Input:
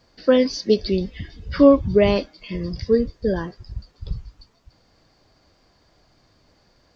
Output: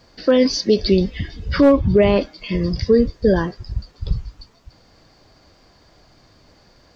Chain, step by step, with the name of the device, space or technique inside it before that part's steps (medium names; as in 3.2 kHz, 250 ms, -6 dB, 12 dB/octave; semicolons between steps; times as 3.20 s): 1.76–2.20 s: low-pass 5.2 kHz -> 2.7 kHz 12 dB/octave; clipper into limiter (hard clipper -5.5 dBFS, distortion -22 dB; peak limiter -12.5 dBFS, peak gain reduction 7 dB); trim +7 dB